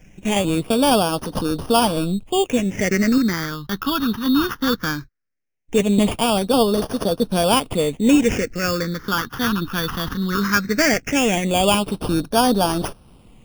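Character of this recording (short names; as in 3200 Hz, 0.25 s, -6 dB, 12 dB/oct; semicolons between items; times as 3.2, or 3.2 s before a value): aliases and images of a low sample rate 4000 Hz, jitter 0%; phasing stages 6, 0.18 Hz, lowest notch 580–2100 Hz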